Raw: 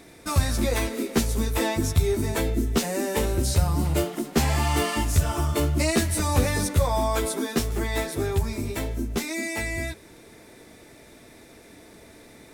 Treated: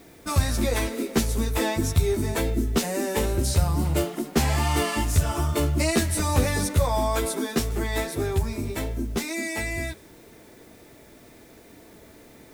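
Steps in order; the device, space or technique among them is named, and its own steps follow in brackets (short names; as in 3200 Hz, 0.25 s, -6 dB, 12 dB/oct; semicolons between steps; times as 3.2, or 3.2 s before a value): plain cassette with noise reduction switched in (mismatched tape noise reduction decoder only; wow and flutter 21 cents; white noise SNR 33 dB)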